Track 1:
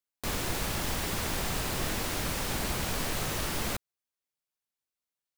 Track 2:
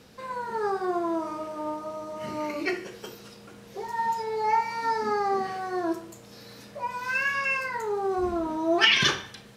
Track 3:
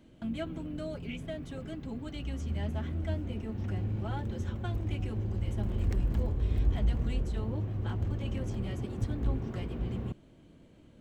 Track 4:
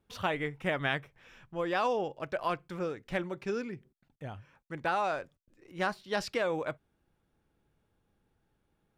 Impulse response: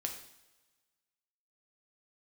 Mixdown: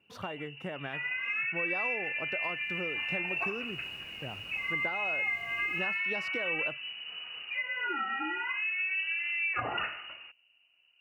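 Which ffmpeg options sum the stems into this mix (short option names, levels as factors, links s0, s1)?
-filter_complex "[0:a]acompressor=threshold=0.02:ratio=6,adelay=2200,volume=0.178,afade=t=in:st=3.14:d=0.43:silence=0.421697[s0];[1:a]aemphasis=mode=reproduction:type=75kf,adelay=750,volume=1.19[s1];[2:a]acompressor=threshold=0.0224:ratio=2,volume=0.282[s2];[3:a]highpass=120,equalizer=f=2800:w=3.6:g=-9.5,volume=1.26[s3];[s1][s2]amix=inputs=2:normalize=0,lowpass=f=2600:t=q:w=0.5098,lowpass=f=2600:t=q:w=0.6013,lowpass=f=2600:t=q:w=0.9,lowpass=f=2600:t=q:w=2.563,afreqshift=-3000,acompressor=threshold=0.0282:ratio=4,volume=1[s4];[s0][s3]amix=inputs=2:normalize=0,highshelf=f=2500:g=-8.5,acompressor=threshold=0.0158:ratio=6,volume=1[s5];[s4][s5]amix=inputs=2:normalize=0,highpass=56"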